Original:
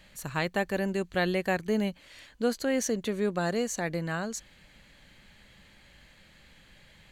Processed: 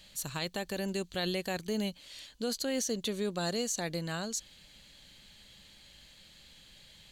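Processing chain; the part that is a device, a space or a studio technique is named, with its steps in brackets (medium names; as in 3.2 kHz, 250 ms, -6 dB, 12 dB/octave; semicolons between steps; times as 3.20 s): over-bright horn tweeter (resonant high shelf 2.7 kHz +8.5 dB, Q 1.5; peak limiter -19.5 dBFS, peak gain reduction 9.5 dB); trim -4 dB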